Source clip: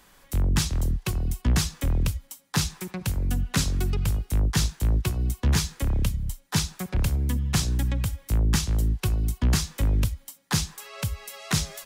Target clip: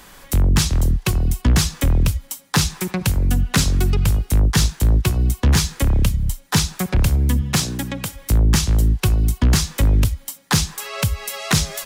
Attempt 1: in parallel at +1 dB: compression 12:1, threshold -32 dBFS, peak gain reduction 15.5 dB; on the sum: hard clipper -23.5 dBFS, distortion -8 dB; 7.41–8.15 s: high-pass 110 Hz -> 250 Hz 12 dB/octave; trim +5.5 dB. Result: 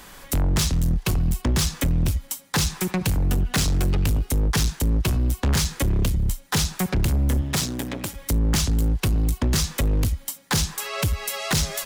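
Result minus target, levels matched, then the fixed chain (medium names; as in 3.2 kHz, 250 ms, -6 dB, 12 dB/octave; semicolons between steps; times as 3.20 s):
hard clipper: distortion +17 dB
in parallel at +1 dB: compression 12:1, threshold -32 dBFS, peak gain reduction 15.5 dB; on the sum: hard clipper -14 dBFS, distortion -25 dB; 7.41–8.15 s: high-pass 110 Hz -> 250 Hz 12 dB/octave; trim +5.5 dB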